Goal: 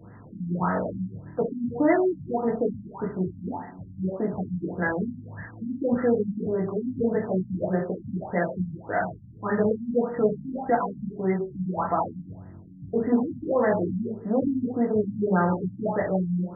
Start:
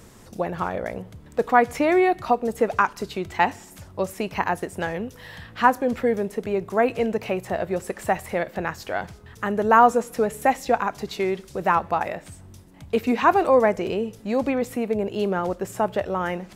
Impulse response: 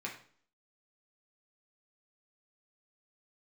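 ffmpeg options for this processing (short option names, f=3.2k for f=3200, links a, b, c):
-filter_complex "[0:a]alimiter=limit=-14dB:level=0:latency=1:release=13[a];[1:a]atrim=start_sample=2205,asetrate=37485,aresample=44100[b];[a][b]afir=irnorm=-1:irlink=0,afftfilt=real='re*lt(b*sr/1024,260*pow(2100/260,0.5+0.5*sin(2*PI*1.7*pts/sr)))':imag='im*lt(b*sr/1024,260*pow(2100/260,0.5+0.5*sin(2*PI*1.7*pts/sr)))':win_size=1024:overlap=0.75"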